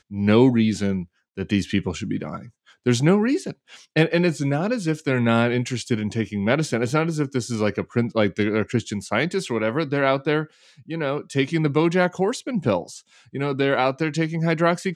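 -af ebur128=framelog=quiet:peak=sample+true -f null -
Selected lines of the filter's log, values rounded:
Integrated loudness:
  I:         -22.4 LUFS
  Threshold: -32.8 LUFS
Loudness range:
  LRA:         2.2 LU
  Threshold: -43.0 LUFS
  LRA low:   -24.0 LUFS
  LRA high:  -21.8 LUFS
Sample peak:
  Peak:       -4.1 dBFS
True peak:
  Peak:       -4.1 dBFS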